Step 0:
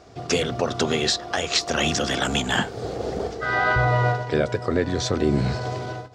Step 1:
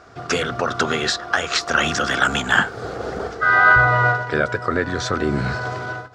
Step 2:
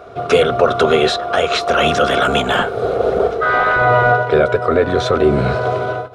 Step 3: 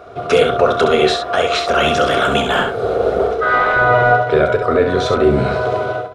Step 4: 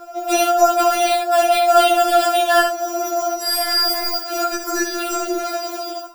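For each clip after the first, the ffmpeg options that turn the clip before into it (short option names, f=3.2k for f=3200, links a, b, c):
-af "equalizer=f=1.4k:t=o:w=0.82:g=14,volume=-1dB"
-af "apsyclip=14.5dB,superequalizer=7b=2.51:8b=2.51:11b=0.501:14b=0.355:15b=0.355,volume=-9dB"
-af "aecho=1:1:29|67:0.266|0.447,volume=-1dB"
-af "acrusher=samples=7:mix=1:aa=0.000001,afftfilt=real='re*4*eq(mod(b,16),0)':imag='im*4*eq(mod(b,16),0)':win_size=2048:overlap=0.75"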